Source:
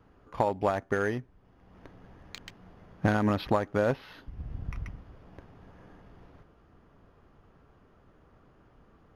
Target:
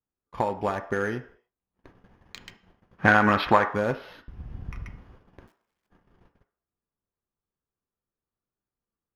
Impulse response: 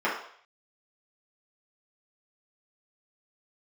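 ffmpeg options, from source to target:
-filter_complex "[0:a]asplit=3[link_01][link_02][link_03];[link_01]afade=type=out:start_time=2.97:duration=0.02[link_04];[link_02]equalizer=frequency=1600:width_type=o:width=2.6:gain=13,afade=type=in:start_time=2.97:duration=0.02,afade=type=out:start_time=3.65:duration=0.02[link_05];[link_03]afade=type=in:start_time=3.65:duration=0.02[link_06];[link_04][link_05][link_06]amix=inputs=3:normalize=0,asplit=3[link_07][link_08][link_09];[link_07]afade=type=out:start_time=5.46:duration=0.02[link_10];[link_08]aeval=exprs='(mod(282*val(0)+1,2)-1)/282':channel_layout=same,afade=type=in:start_time=5.46:duration=0.02,afade=type=out:start_time=5.87:duration=0.02[link_11];[link_09]afade=type=in:start_time=5.87:duration=0.02[link_12];[link_10][link_11][link_12]amix=inputs=3:normalize=0,agate=range=-34dB:threshold=-50dB:ratio=16:detection=peak,asplit=2[link_13][link_14];[1:a]atrim=start_sample=2205,afade=type=out:start_time=0.37:duration=0.01,atrim=end_sample=16758,highshelf=frequency=3000:gain=11.5[link_15];[link_14][link_15]afir=irnorm=-1:irlink=0,volume=-22dB[link_16];[link_13][link_16]amix=inputs=2:normalize=0"

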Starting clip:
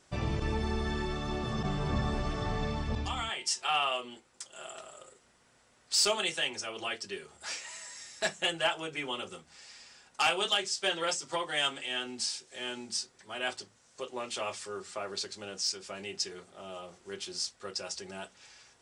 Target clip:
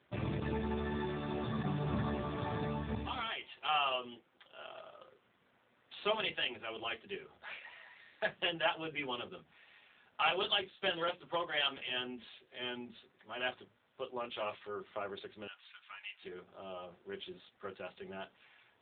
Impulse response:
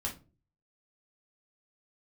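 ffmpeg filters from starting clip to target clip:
-filter_complex "[0:a]asettb=1/sr,asplit=3[link_01][link_02][link_03];[link_01]atrim=end=15.474[link_04];[link_02]atrim=start=15.47:end=16.22,asetpts=PTS-STARTPTS,afade=type=in:duration=0.004:curve=qsin,afade=type=out:start_time=0.746:duration=0.004:curve=qsin,highpass=frequency=1000:width=0.5412,highpass=frequency=1000:width=1.3066[link_05];[link_03]atrim=start=16.216[link_06];[link_04][link_05]acrossfade=duration=0.004:curve1=hsin:curve2=qsin[link_07];[link_07][link_06]acrossfade=duration=0.004:curve1=qsin:curve2=hsin,volume=-1.5dB" -ar 8000 -c:a libopencore_amrnb -b:a 7400

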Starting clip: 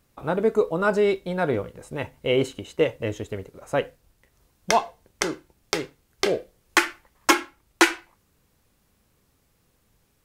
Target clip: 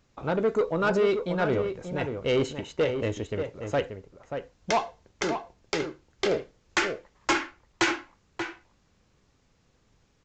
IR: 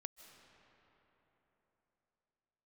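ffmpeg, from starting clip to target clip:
-filter_complex "[0:a]aresample=16000,asoftclip=type=tanh:threshold=-18dB,aresample=44100,asplit=2[link_01][link_02];[link_02]adelay=583.1,volume=-7dB,highshelf=frequency=4000:gain=-13.1[link_03];[link_01][link_03]amix=inputs=2:normalize=0"

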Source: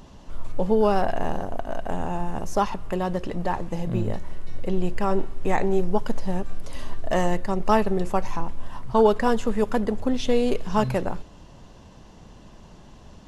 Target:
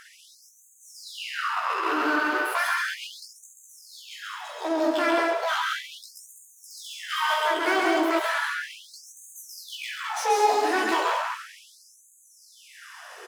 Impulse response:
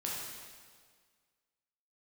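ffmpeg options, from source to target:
-filter_complex "[0:a]equalizer=frequency=440:width=0.38:gain=-9.5,bandreject=frequency=2700:width=12,asetrate=76340,aresample=44100,atempo=0.577676,flanger=delay=15:depth=3.8:speed=1.1,asplit=2[link_01][link_02];[link_02]highpass=frequency=720:poles=1,volume=30dB,asoftclip=type=tanh:threshold=-13dB[link_03];[link_01][link_03]amix=inputs=2:normalize=0,lowpass=frequency=1900:poles=1,volume=-6dB,aecho=1:1:134.1|204.1:0.708|0.562,asplit=2[link_04][link_05];[1:a]atrim=start_sample=2205,asetrate=41454,aresample=44100[link_06];[link_05][link_06]afir=irnorm=-1:irlink=0,volume=-5.5dB[link_07];[link_04][link_07]amix=inputs=2:normalize=0,afftfilt=real='re*gte(b*sr/1024,220*pow(6300/220,0.5+0.5*sin(2*PI*0.35*pts/sr)))':imag='im*gte(b*sr/1024,220*pow(6300/220,0.5+0.5*sin(2*PI*0.35*pts/sr)))':win_size=1024:overlap=0.75,volume=-5.5dB"

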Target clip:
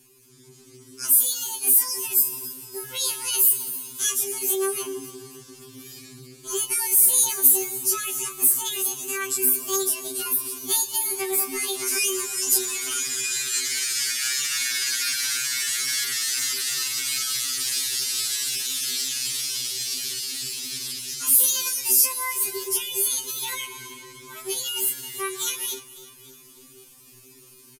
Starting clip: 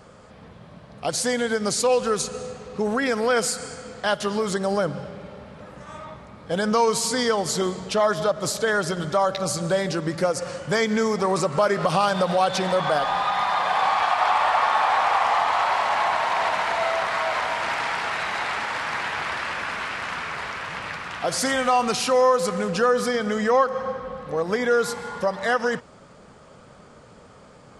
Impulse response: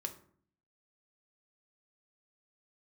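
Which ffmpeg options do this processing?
-filter_complex "[0:a]firequalizer=gain_entry='entry(180,0);entry(280,-18);entry(2500,5)':delay=0.05:min_phase=1,aecho=1:1:283|566|849|1132|1415:0.126|0.068|0.0367|0.0198|0.0107,dynaudnorm=framelen=310:gausssize=3:maxgain=6.5dB,equalizer=frequency=6200:width_type=o:width=1.6:gain=12.5,asplit=2[link_01][link_02];[1:a]atrim=start_sample=2205[link_03];[link_02][link_03]afir=irnorm=-1:irlink=0,volume=-6.5dB[link_04];[link_01][link_04]amix=inputs=2:normalize=0,asetrate=88200,aresample=44100,atempo=0.5,aresample=32000,aresample=44100,afftfilt=real='re*2.45*eq(mod(b,6),0)':imag='im*2.45*eq(mod(b,6),0)':win_size=2048:overlap=0.75,volume=-9dB"

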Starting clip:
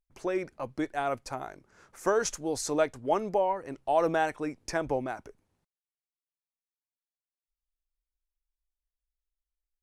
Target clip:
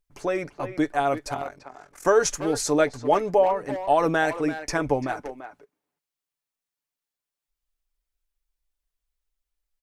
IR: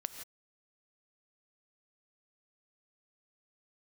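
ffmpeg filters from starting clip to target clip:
-filter_complex "[0:a]aecho=1:1:6.9:0.44,asettb=1/sr,asplit=3[link_01][link_02][link_03];[link_01]atrim=end=1.344[link_04];[link_02]atrim=start=1.34:end=2.05,asetpts=PTS-STARTPTS,afade=type=in:duration=0.004:curve=qsin,afade=type=out:start_time=0.706:duration=0.004:curve=qsin,tremolo=f=42:d=0.824[link_05];[link_03]atrim=start=2.046[link_06];[link_04][link_05]acrossfade=duration=0.004:curve1=hsin:curve2=qsin[link_07];[link_07][link_06]acrossfade=duration=0.004:curve1=qsin:curve2=hsin,asplit=2[link_08][link_09];[link_09]adelay=340,highpass=300,lowpass=3400,asoftclip=type=hard:threshold=-23.5dB,volume=-10dB[link_10];[link_08][link_10]amix=inputs=2:normalize=0,volume=5.5dB"

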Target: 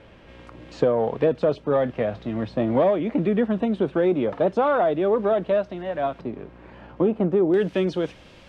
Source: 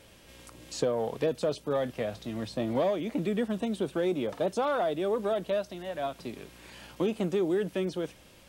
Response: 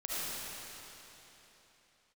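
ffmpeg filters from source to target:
-af "asetnsamples=nb_out_samples=441:pad=0,asendcmd='6.21 lowpass f 1200;7.54 lowpass f 4200',lowpass=2100,volume=8dB"

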